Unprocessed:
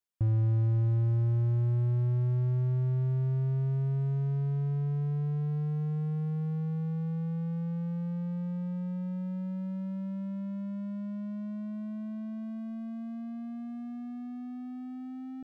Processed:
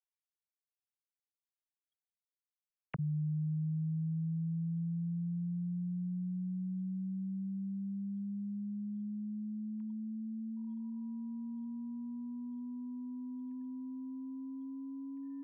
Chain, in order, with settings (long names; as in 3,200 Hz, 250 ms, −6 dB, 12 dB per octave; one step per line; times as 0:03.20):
three sine waves on the formant tracks
level −8.5 dB